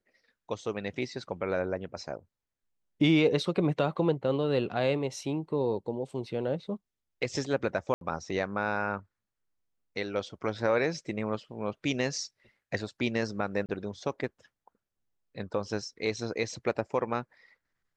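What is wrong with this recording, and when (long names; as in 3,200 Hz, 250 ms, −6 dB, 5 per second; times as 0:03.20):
0:07.94–0:08.01: drop-out 72 ms
0:13.66–0:13.69: drop-out 28 ms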